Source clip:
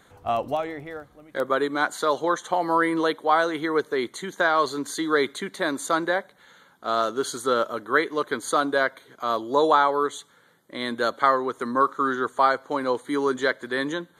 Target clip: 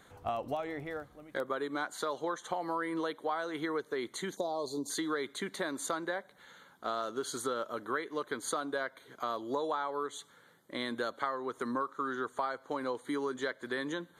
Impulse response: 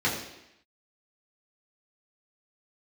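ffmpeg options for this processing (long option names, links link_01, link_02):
-filter_complex "[0:a]asplit=3[link_01][link_02][link_03];[link_01]afade=type=out:start_time=4.35:duration=0.02[link_04];[link_02]asuperstop=centerf=1900:order=8:qfactor=0.62,afade=type=in:start_time=4.35:duration=0.02,afade=type=out:start_time=4.89:duration=0.02[link_05];[link_03]afade=type=in:start_time=4.89:duration=0.02[link_06];[link_04][link_05][link_06]amix=inputs=3:normalize=0,acompressor=threshold=-29dB:ratio=5,volume=-3dB"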